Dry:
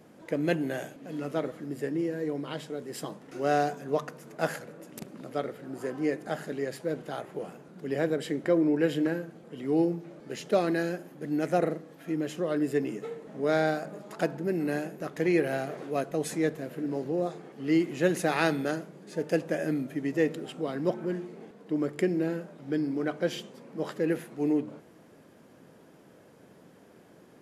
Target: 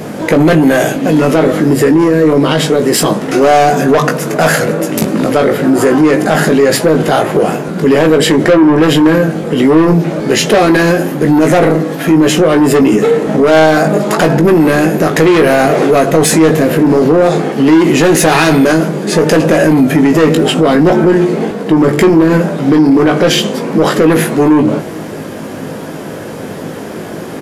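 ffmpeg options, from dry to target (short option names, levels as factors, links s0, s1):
-filter_complex "[0:a]asoftclip=type=tanh:threshold=0.0398,asplit=2[s0][s1];[s1]adelay=19,volume=0.501[s2];[s0][s2]amix=inputs=2:normalize=0,alimiter=level_in=39.8:limit=0.891:release=50:level=0:latency=1,volume=0.891"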